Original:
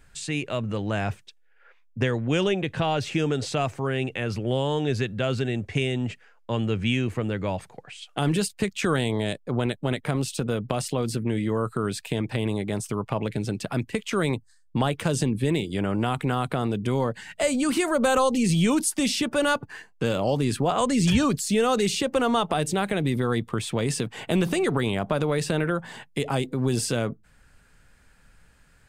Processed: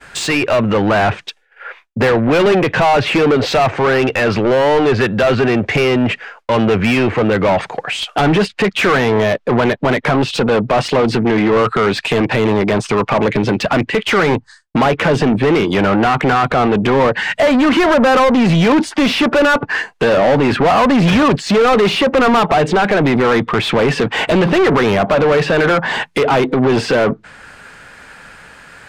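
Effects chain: treble ducked by the level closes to 2500 Hz, closed at -22.5 dBFS; overdrive pedal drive 30 dB, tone 2100 Hz, clips at -8.5 dBFS; expander -41 dBFS; gain +4.5 dB

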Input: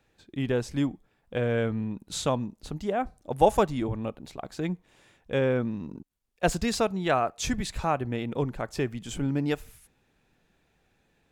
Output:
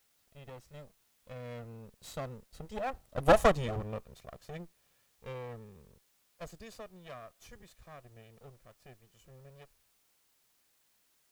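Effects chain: minimum comb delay 1.6 ms; Doppler pass-by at 3.4, 14 m/s, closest 3.9 m; requantised 12-bit, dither triangular

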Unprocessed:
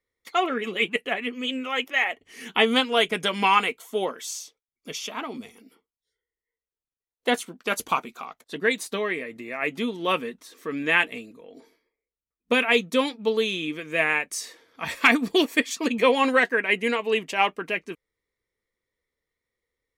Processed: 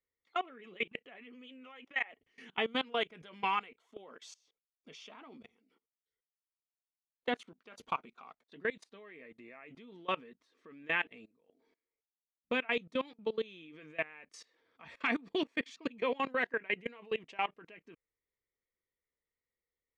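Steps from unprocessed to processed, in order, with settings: LPF 3600 Hz 12 dB/oct; level quantiser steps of 22 dB; gain -8.5 dB

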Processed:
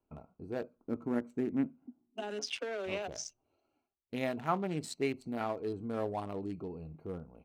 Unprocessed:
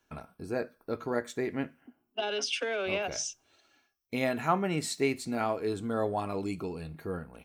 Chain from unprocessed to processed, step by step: Wiener smoothing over 25 samples; 0.75–2.4 graphic EQ 250/500/4000/8000 Hz +10/-5/-9/+3 dB; gain -4.5 dB

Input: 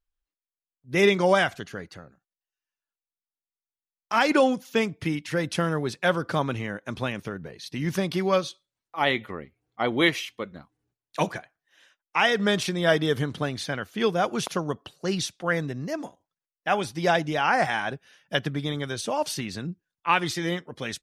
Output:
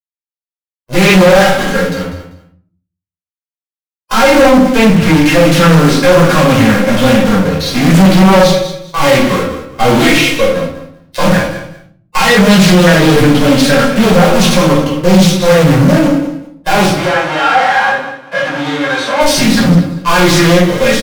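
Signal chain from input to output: block floating point 5-bit; comb 3.7 ms, depth 37%; fuzz box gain 37 dB, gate -41 dBFS; 16.88–19.2 band-pass 1400 Hz, Q 0.88; feedback echo 0.195 s, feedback 20%, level -13 dB; shoebox room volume 460 m³, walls furnished, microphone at 5.2 m; harmonic-percussive split percussive -16 dB; sine folder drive 8 dB, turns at 7.5 dBFS; Doppler distortion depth 0.26 ms; gain -9 dB

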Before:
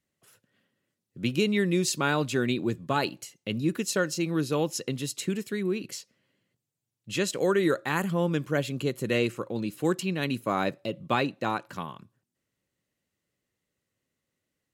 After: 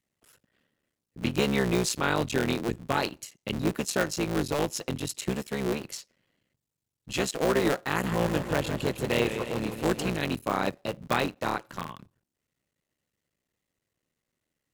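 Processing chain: cycle switcher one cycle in 3, muted; 7.89–10.16 warbling echo 0.157 s, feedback 64%, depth 128 cents, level -9 dB; gain +1 dB

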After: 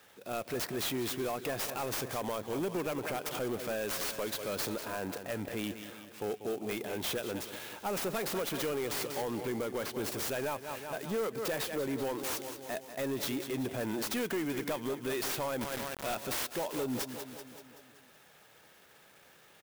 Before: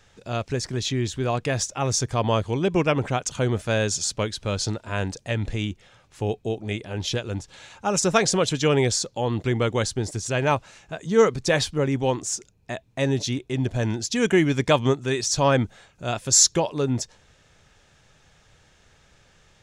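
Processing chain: tracing distortion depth 0.24 ms; transient shaper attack -4 dB, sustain +3 dB; HPF 260 Hz 12 dB/oct; feedback echo 0.19 s, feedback 57%, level -14.5 dB; compressor 10:1, threshold -27 dBFS, peak gain reduction 13.5 dB; 4.92–5.64 high shelf 3300 Hz -8 dB; soft clip -28 dBFS, distortion -12 dB; 9.22–9.94 air absorption 86 m; 15.61–16.15 requantised 6-bit, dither none; clock jitter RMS 0.039 ms

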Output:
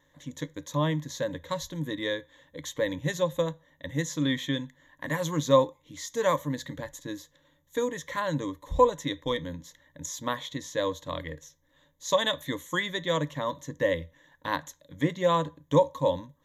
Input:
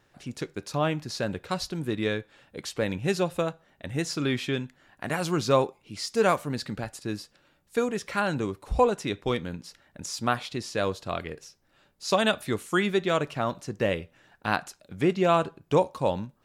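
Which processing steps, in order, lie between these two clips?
ripple EQ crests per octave 1.1, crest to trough 17 dB; gain -5 dB

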